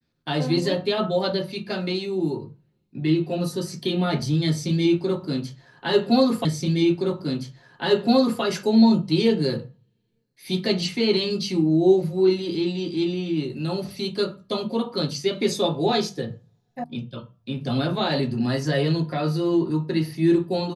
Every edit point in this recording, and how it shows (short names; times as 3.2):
6.45 repeat of the last 1.97 s
16.84 sound cut off